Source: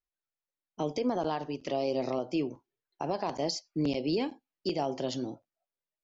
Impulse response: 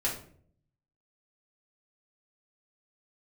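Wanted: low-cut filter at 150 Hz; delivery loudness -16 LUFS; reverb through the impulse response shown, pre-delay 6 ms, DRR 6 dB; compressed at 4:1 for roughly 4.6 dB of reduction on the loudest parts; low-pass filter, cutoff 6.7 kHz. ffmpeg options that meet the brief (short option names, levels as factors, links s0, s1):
-filter_complex "[0:a]highpass=150,lowpass=6700,acompressor=threshold=0.0282:ratio=4,asplit=2[s0][s1];[1:a]atrim=start_sample=2205,adelay=6[s2];[s1][s2]afir=irnorm=-1:irlink=0,volume=0.237[s3];[s0][s3]amix=inputs=2:normalize=0,volume=10"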